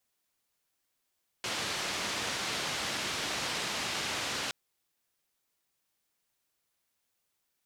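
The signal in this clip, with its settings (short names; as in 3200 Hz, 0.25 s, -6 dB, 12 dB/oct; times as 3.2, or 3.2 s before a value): noise band 83–4800 Hz, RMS -34.5 dBFS 3.07 s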